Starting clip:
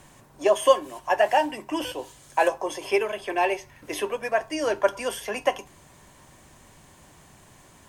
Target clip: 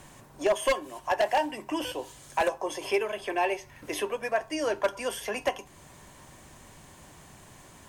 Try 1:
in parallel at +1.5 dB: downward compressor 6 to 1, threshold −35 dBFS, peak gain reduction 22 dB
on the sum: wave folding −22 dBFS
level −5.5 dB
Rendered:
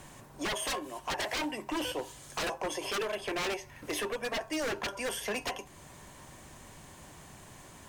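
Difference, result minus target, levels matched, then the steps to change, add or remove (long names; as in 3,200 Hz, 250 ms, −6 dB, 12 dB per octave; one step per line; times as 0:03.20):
wave folding: distortion +19 dB
change: wave folding −11 dBFS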